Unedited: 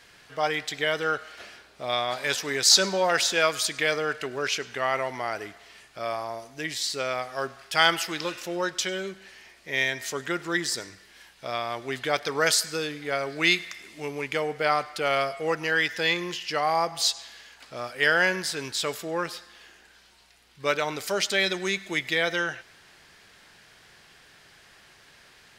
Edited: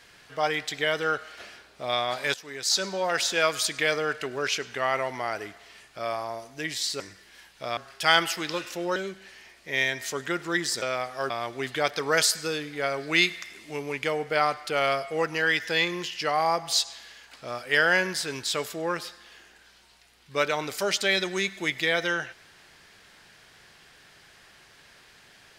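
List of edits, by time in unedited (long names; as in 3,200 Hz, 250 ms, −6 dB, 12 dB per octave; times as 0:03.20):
0:02.34–0:03.59: fade in, from −14.5 dB
0:07.00–0:07.48: swap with 0:10.82–0:11.59
0:08.67–0:08.96: remove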